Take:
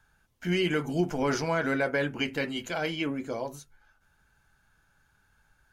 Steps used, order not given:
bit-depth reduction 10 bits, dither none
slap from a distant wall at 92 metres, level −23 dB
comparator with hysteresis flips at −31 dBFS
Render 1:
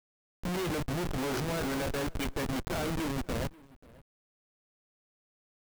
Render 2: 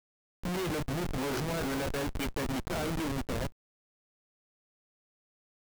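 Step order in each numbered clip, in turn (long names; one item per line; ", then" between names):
comparator with hysteresis, then slap from a distant wall, then bit-depth reduction
slap from a distant wall, then comparator with hysteresis, then bit-depth reduction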